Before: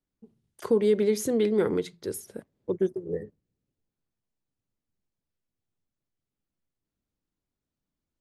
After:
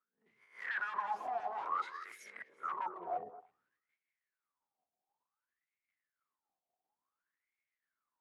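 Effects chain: spectral swells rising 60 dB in 0.31 s; 1.47–2.09 HPF 240 Hz -> 530 Hz 12 dB/oct; in parallel at +2.5 dB: compressor, threshold -38 dBFS, peak gain reduction 19 dB; on the sum: wavefolder -28.5 dBFS; transient shaper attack -10 dB, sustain +11 dB; wah 0.56 Hz 710–2200 Hz, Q 16; delay with a stepping band-pass 0.111 s, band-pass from 410 Hz, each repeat 1.4 oct, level -9 dB; gain +10 dB

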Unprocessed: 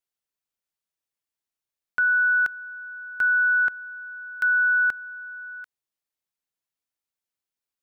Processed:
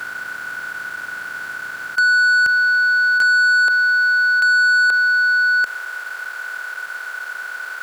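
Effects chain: per-bin compression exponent 0.2; HPF 86 Hz 24 dB/oct, from 3.22 s 430 Hz; sample leveller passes 2; gain +2.5 dB

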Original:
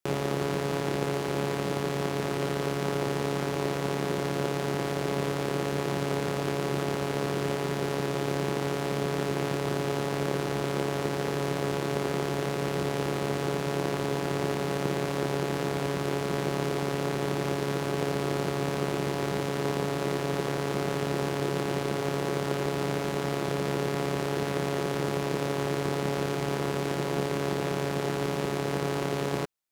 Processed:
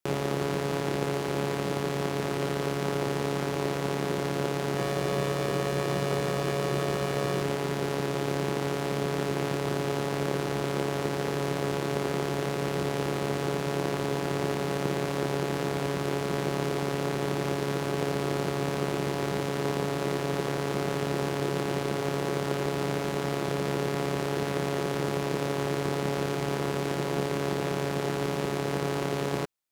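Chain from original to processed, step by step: 4.75–7.42 doubler 16 ms -4.5 dB

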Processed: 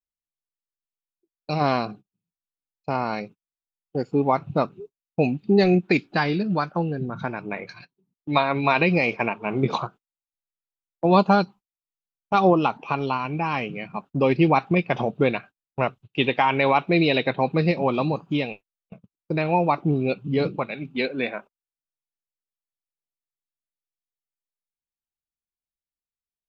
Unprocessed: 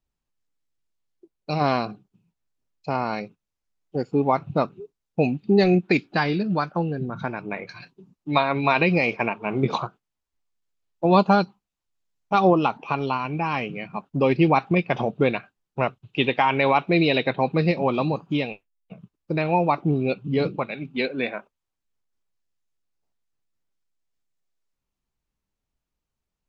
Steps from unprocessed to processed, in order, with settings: gate -41 dBFS, range -21 dB

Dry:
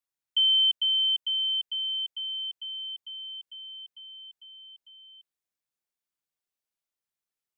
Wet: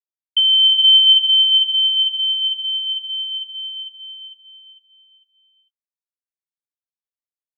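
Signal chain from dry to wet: expander -38 dBFS; non-linear reverb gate 0.5 s rising, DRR -4 dB; gain +8 dB

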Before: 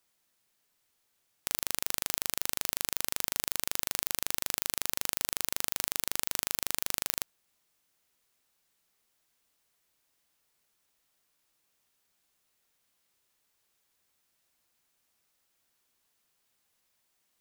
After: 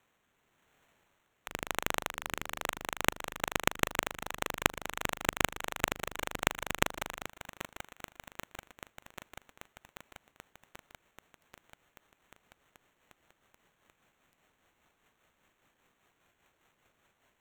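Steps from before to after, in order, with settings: octaver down 1 oct, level -6 dB; 2.1–2.64 de-hum 74.74 Hz, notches 7; in parallel at -1 dB: compressor 6:1, threshold -42 dBFS, peak gain reduction 17 dB; on the sum: rotary speaker horn 0.9 Hz, later 5 Hz, at 1.83; sample-and-hold 9×; lo-fi delay 0.786 s, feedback 80%, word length 6-bit, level -14.5 dB; gain +1 dB

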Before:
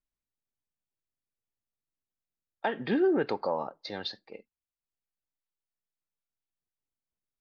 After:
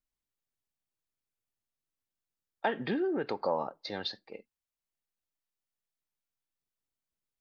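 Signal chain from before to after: 2.72–3.44 compressor 4:1, threshold -29 dBFS, peak gain reduction 7 dB

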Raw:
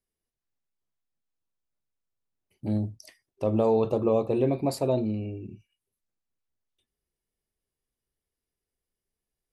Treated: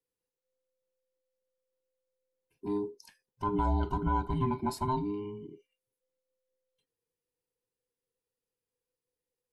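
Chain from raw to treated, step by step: band inversion scrambler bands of 500 Hz; gain -5.5 dB

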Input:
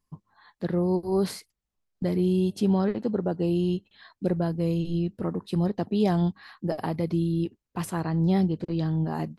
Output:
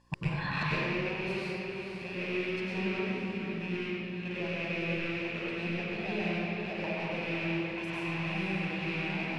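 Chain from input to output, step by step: rattling part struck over -32 dBFS, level -19 dBFS; spectral delete 2.99–3.6, 330–10000 Hz; diffused feedback echo 0.513 s, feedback 43%, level -6 dB; flipped gate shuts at -30 dBFS, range -29 dB; buzz 60 Hz, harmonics 9, -73 dBFS -5 dB/oct; overdrive pedal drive 17 dB, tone 7100 Hz, clips at -27 dBFS; air absorption 67 m; reverb RT60 2.0 s, pre-delay 95 ms, DRR -7.5 dB; gain +2.5 dB

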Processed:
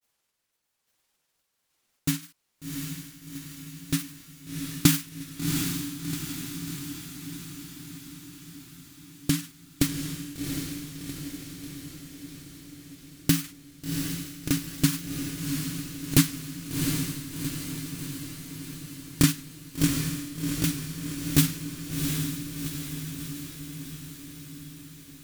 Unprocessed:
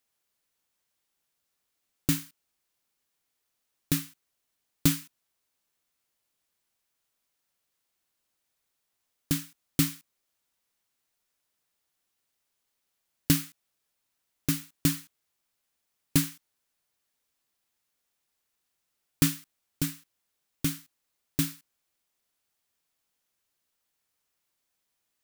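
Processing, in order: wow and flutter 28 cents; random-step tremolo 3.5 Hz, depth 55%; grains, spray 24 ms, pitch spread up and down by 0 st; diffused feedback echo 0.736 s, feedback 63%, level -4 dB; gain +8 dB

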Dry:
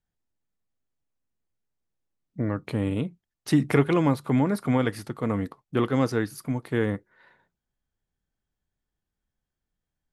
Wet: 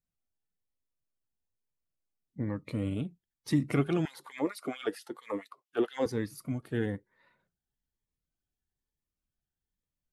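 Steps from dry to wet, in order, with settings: bin magnitudes rounded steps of 15 dB; 4.05–6.06 LFO high-pass sine 4.4 Hz 340–3400 Hz; cascading phaser rising 1.1 Hz; gain -5.5 dB

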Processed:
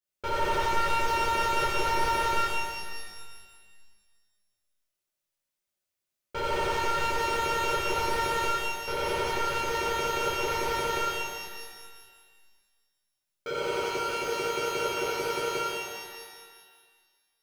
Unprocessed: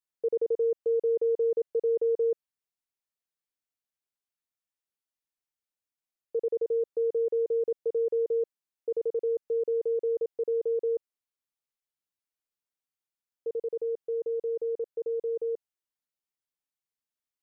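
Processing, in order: one-sided fold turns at -30 dBFS; limiter -28.5 dBFS, peak gain reduction 7 dB; small resonant body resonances 370/580 Hz, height 14 dB, ringing for 80 ms; sample leveller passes 3; soft clip -29 dBFS, distortion -18 dB; bell 510 Hz -6 dB 1.7 oct; notch 450 Hz, Q 12; shimmer reverb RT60 1.7 s, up +12 st, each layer -8 dB, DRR -9.5 dB; gain +2.5 dB

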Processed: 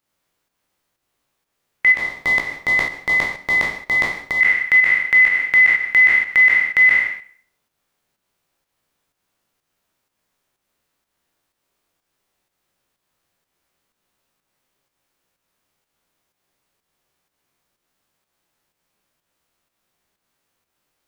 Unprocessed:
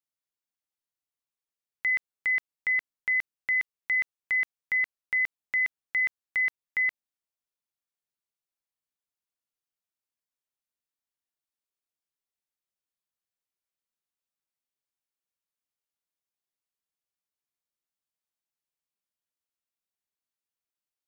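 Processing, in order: spectral trails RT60 0.50 s; 1.94–4.41 band shelf 2000 Hz -15 dB 1.3 oct; compressor 4:1, threshold -32 dBFS, peak gain reduction 8 dB; non-linear reverb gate 0.17 s flat, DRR 9 dB; pump 125 bpm, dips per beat 1, -7 dB, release 0.207 s; maximiser +29 dB; mismatched tape noise reduction decoder only; gain -5.5 dB

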